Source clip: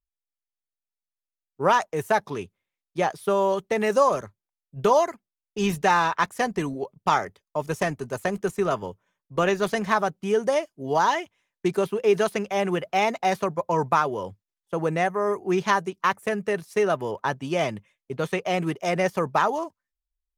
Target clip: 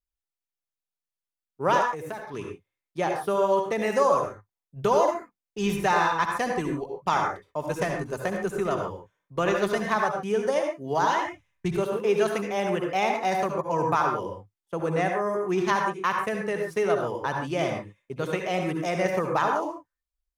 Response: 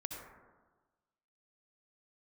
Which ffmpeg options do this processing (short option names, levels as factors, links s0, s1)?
-filter_complex "[0:a]asettb=1/sr,asplit=3[s0][s1][s2];[s0]atrim=end=1.794[s3];[s1]atrim=start=1.79:end=2.34,asetpts=PTS-STARTPTS,afade=t=in:d=0.004:c=qsin,afade=t=out:st=0.546:d=0.004:c=qsin,acompressor=threshold=0.0282:ratio=5[s4];[s2]atrim=start=2.336[s5];[s3][s4]acrossfade=d=0.004:c1=hsin:c2=qsin[s6];[s6][s5]acrossfade=d=0.004:c1=qsin:c2=hsin,asplit=3[s7][s8][s9];[s7]afade=t=out:st=11.19:d=0.02[s10];[s8]asubboost=boost=8.5:cutoff=110,afade=t=in:st=11.19:d=0.02,afade=t=out:st=11.73:d=0.02[s11];[s9]afade=t=in:st=11.73:d=0.02[s12];[s10][s11][s12]amix=inputs=3:normalize=0[s13];[1:a]atrim=start_sample=2205,atrim=end_sample=6615[s14];[s13][s14]afir=irnorm=-1:irlink=0"